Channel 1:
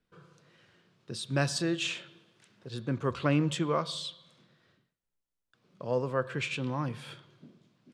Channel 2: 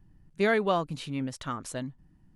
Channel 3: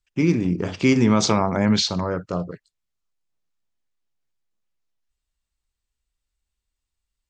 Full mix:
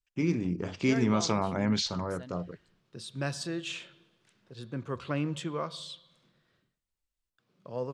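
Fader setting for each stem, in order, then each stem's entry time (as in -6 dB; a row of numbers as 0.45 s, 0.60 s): -5.0 dB, -12.5 dB, -9.0 dB; 1.85 s, 0.45 s, 0.00 s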